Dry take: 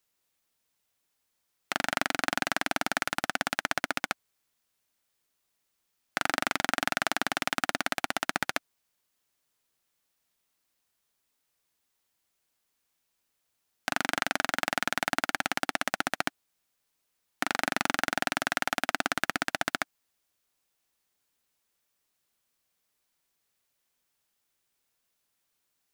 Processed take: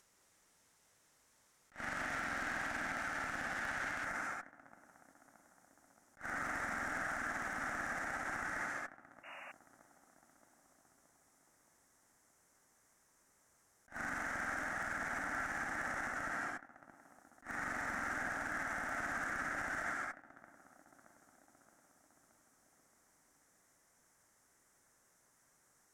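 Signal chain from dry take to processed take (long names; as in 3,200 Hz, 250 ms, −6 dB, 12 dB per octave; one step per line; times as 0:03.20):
upward compression, threshold −48 dBFS
low-pass filter 8,400 Hz 12 dB per octave
feedback echo with a low-pass in the loop 623 ms, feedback 65%, low-pass 1,900 Hz, level −24 dB
reverb whose tail is shaped and stops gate 310 ms flat, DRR 4 dB
tube saturation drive 29 dB, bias 0.75
flat-topped bell 3,400 Hz −8 dB 1.2 octaves, from 0:04.04 −15.5 dB
brickwall limiter −33.5 dBFS, peak gain reduction 10 dB
dynamic equaliser 1,800 Hz, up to +7 dB, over −59 dBFS, Q 1.3
0:09.23–0:09.52: sound drawn into the spectrogram noise 550–2,900 Hz −51 dBFS
level that may rise only so fast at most 280 dB per second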